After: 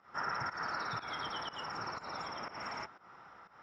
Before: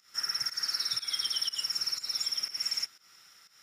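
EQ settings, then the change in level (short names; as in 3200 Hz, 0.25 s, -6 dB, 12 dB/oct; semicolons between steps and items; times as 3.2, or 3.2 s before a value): synth low-pass 930 Hz, resonance Q 2.3; +11.5 dB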